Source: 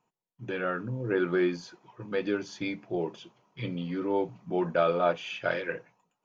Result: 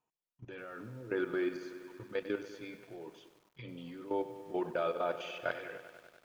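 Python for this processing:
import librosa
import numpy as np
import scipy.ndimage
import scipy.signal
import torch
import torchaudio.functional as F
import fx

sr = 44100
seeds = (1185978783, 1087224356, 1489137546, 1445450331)

y = fx.peak_eq(x, sr, hz=180.0, db=-8.0, octaves=0.46)
y = fx.level_steps(y, sr, step_db=14)
y = fx.echo_crushed(y, sr, ms=97, feedback_pct=80, bits=9, wet_db=-13.0)
y = F.gain(torch.from_numpy(y), -4.0).numpy()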